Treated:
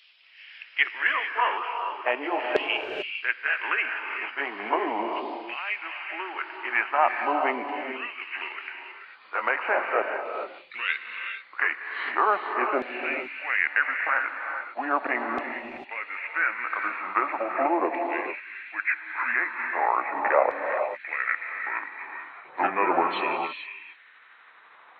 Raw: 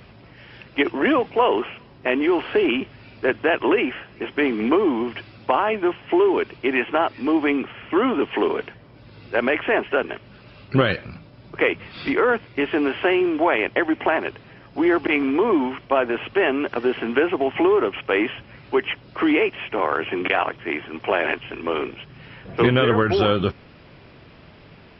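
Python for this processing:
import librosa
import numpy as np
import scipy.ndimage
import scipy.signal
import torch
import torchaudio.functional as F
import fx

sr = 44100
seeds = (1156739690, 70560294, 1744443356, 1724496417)

y = fx.pitch_glide(x, sr, semitones=-5.0, runs='starting unshifted')
y = scipy.signal.sosfilt(scipy.signal.butter(2, 120.0, 'highpass', fs=sr, output='sos'), y)
y = fx.high_shelf(y, sr, hz=3900.0, db=-6.5)
y = fx.filter_lfo_highpass(y, sr, shape='saw_down', hz=0.39, low_hz=550.0, high_hz=3300.0, q=2.1)
y = fx.rev_gated(y, sr, seeds[0], gate_ms=470, shape='rising', drr_db=4.5)
y = y * librosa.db_to_amplitude(-2.0)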